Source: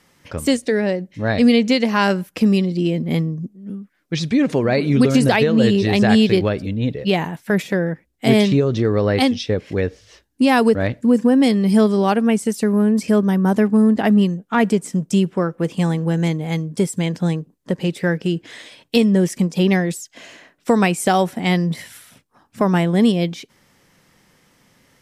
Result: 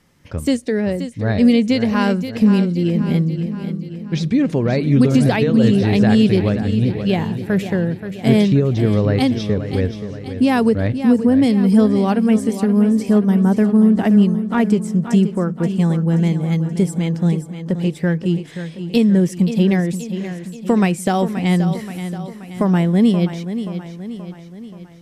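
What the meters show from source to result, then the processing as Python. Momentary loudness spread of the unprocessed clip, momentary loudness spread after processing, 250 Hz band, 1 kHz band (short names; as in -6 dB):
10 LU, 12 LU, +2.0 dB, -3.0 dB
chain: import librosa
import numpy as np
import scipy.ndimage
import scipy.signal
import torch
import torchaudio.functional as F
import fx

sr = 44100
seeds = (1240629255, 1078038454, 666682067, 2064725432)

p1 = fx.low_shelf(x, sr, hz=260.0, db=10.5)
p2 = p1 + fx.echo_feedback(p1, sr, ms=528, feedback_pct=53, wet_db=-10.5, dry=0)
y = p2 * librosa.db_to_amplitude(-4.5)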